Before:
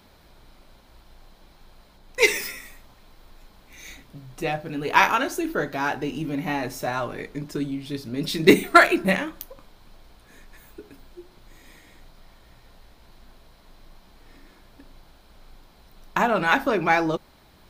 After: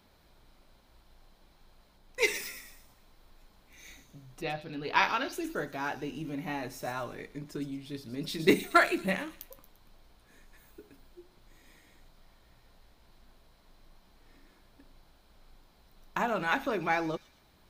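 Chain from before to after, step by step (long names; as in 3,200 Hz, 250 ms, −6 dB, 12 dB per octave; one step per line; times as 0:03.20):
0:04.41–0:05.33: high shelf with overshoot 6,000 Hz −9 dB, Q 3
on a send: delay with a high-pass on its return 115 ms, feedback 41%, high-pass 4,500 Hz, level −7 dB
on the sum: level −9 dB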